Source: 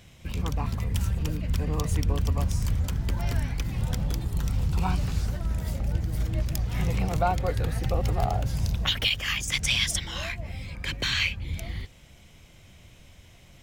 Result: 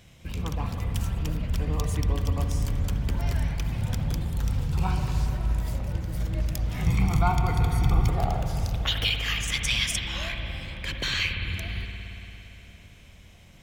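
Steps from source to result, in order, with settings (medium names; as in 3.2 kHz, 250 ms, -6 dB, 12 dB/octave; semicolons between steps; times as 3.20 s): 6.86–8.09 s: comb 0.9 ms, depth 92%; spring tank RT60 3.6 s, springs 57 ms, chirp 45 ms, DRR 4 dB; trim -1.5 dB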